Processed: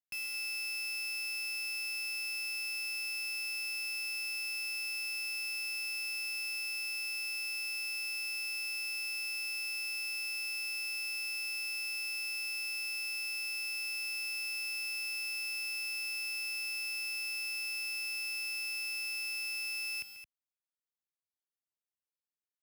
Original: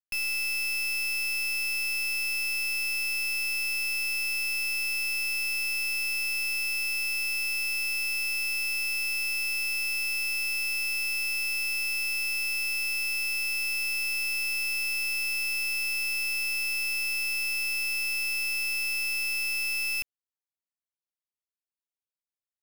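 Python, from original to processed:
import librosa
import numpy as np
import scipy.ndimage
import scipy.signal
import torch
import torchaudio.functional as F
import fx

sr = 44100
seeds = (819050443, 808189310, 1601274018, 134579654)

y = scipy.signal.sosfilt(scipy.signal.butter(2, 73.0, 'highpass', fs=sr, output='sos'), x)
y = fx.echo_multitap(y, sr, ms=(139, 219), db=(-12.0, -11.0))
y = y * 10.0 ** (-8.5 / 20.0)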